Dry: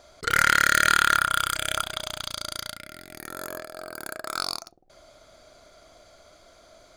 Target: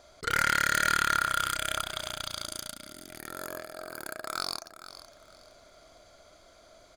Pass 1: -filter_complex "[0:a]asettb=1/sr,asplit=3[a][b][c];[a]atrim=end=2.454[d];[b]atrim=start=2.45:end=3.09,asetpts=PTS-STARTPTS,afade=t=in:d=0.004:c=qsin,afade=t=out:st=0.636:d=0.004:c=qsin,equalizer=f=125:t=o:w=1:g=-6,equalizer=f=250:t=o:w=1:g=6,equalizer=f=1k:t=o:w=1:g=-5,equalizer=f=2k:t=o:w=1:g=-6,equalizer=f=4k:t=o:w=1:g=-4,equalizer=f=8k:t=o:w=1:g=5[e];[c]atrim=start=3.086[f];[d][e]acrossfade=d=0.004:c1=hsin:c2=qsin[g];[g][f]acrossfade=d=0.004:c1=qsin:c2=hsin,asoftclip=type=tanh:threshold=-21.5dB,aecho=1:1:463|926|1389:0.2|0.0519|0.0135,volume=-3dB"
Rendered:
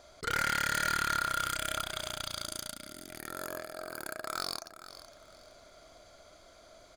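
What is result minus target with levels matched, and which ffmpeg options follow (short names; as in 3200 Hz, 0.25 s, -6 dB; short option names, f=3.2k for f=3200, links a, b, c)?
soft clip: distortion +8 dB
-filter_complex "[0:a]asettb=1/sr,asplit=3[a][b][c];[a]atrim=end=2.454[d];[b]atrim=start=2.45:end=3.09,asetpts=PTS-STARTPTS,afade=t=in:d=0.004:c=qsin,afade=t=out:st=0.636:d=0.004:c=qsin,equalizer=f=125:t=o:w=1:g=-6,equalizer=f=250:t=o:w=1:g=6,equalizer=f=1k:t=o:w=1:g=-5,equalizer=f=2k:t=o:w=1:g=-6,equalizer=f=4k:t=o:w=1:g=-4,equalizer=f=8k:t=o:w=1:g=5[e];[c]atrim=start=3.086[f];[d][e]acrossfade=d=0.004:c1=hsin:c2=qsin[g];[g][f]acrossfade=d=0.004:c1=qsin:c2=hsin,asoftclip=type=tanh:threshold=-13dB,aecho=1:1:463|926|1389:0.2|0.0519|0.0135,volume=-3dB"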